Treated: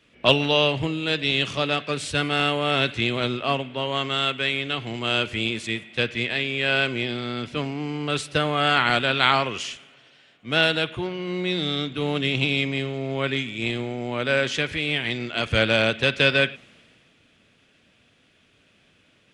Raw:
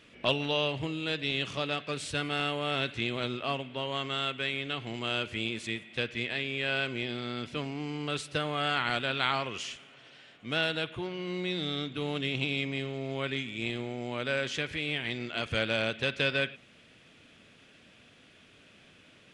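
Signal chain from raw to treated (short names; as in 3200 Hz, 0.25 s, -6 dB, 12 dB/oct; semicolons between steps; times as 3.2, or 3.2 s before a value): three-band expander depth 40%; gain +8.5 dB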